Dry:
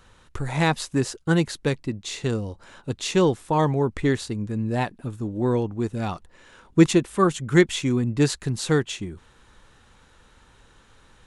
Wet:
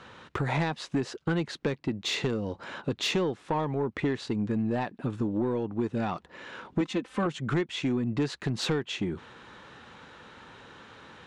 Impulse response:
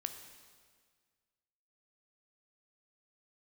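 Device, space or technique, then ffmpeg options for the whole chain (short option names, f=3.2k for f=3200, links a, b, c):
AM radio: -filter_complex "[0:a]asettb=1/sr,asplit=3[a][b][c];[a]atrim=end=6.804[d];[b]atrim=start=6.8:end=7.26,asetpts=PTS-STARTPTS,afade=t=in:d=0.004:c=qsin,afade=t=out:st=0.456:d=0.004:c=qsin,aecho=1:1:3.9:0.78,atrim=end_sample=20286[e];[c]atrim=start=7.256[f];[d][e]acrossfade=d=0.004:c1=hsin:c2=qsin[g];[g][f]acrossfade=d=0.004:c1=qsin:c2=hsin,highpass=150,lowpass=3.8k,acompressor=threshold=-32dB:ratio=8,asoftclip=type=tanh:threshold=-27.5dB,volume=8.5dB"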